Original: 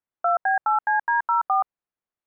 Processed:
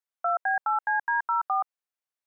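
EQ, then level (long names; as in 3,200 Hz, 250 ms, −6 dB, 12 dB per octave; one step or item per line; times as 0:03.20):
high-pass filter 620 Hz 12 dB per octave
parametric band 970 Hz −4.5 dB 1.7 octaves
0.0 dB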